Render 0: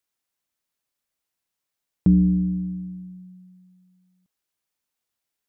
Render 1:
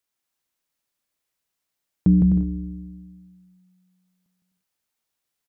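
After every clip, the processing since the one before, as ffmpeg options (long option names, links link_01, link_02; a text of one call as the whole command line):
ffmpeg -i in.wav -af "aecho=1:1:160|256|313.6|348.2|368.9:0.631|0.398|0.251|0.158|0.1" out.wav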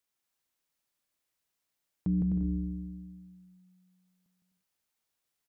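ffmpeg -i in.wav -af "alimiter=limit=-21.5dB:level=0:latency=1:release=34,volume=-2.5dB" out.wav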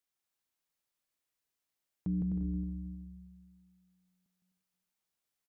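ffmpeg -i in.wav -af "aecho=1:1:316|632|948:0.224|0.0582|0.0151,volume=-4.5dB" out.wav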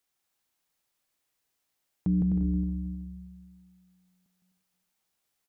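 ffmpeg -i in.wav -af "equalizer=frequency=780:width=7.4:gain=3,volume=7.5dB" out.wav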